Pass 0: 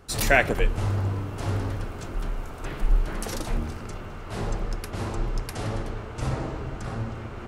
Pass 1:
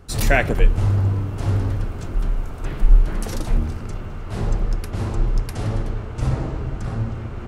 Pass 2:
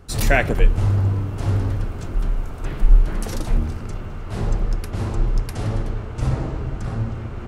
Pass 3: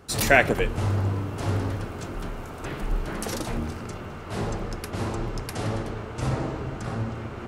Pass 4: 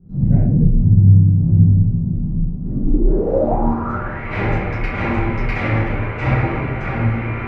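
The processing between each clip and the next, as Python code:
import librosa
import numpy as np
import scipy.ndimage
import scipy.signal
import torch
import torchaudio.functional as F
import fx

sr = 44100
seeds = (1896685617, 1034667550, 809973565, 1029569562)

y1 = fx.low_shelf(x, sr, hz=240.0, db=9.0)
y2 = y1
y3 = fx.highpass(y2, sr, hz=230.0, slope=6)
y3 = y3 * librosa.db_to_amplitude(1.5)
y4 = fx.room_shoebox(y3, sr, seeds[0], volume_m3=63.0, walls='mixed', distance_m=1.9)
y4 = fx.filter_sweep_lowpass(y4, sr, from_hz=170.0, to_hz=2200.0, start_s=2.58, end_s=4.28, q=5.2)
y4 = y4 * librosa.db_to_amplitude(-2.0)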